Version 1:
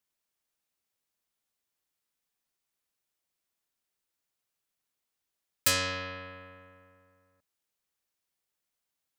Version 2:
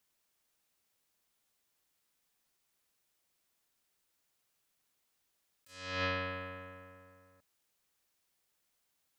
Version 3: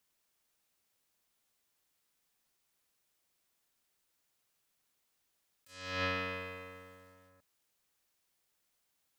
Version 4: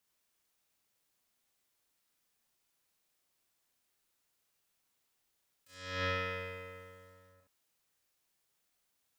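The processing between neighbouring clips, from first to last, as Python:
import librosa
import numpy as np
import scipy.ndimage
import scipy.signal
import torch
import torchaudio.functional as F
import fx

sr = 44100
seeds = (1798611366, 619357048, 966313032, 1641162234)

y1 = fx.over_compress(x, sr, threshold_db=-38.0, ratio=-0.5)
y2 = fx.echo_crushed(y1, sr, ms=145, feedback_pct=55, bits=10, wet_db=-9)
y3 = fx.room_early_taps(y2, sr, ms=(33, 67), db=(-6.0, -4.0))
y3 = y3 * librosa.db_to_amplitude(-2.5)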